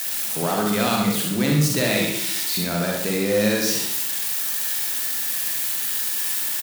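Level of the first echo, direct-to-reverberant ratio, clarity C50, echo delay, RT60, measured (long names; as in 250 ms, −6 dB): −6.0 dB, −1.5 dB, 0.5 dB, 67 ms, 0.70 s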